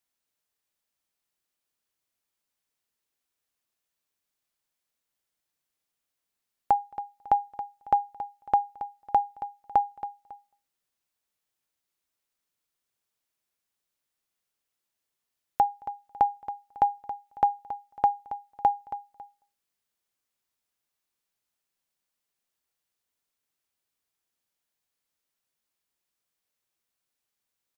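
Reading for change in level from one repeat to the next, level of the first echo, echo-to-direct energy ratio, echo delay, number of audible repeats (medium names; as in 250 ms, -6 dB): -10.0 dB, -13.0 dB, -12.5 dB, 275 ms, 2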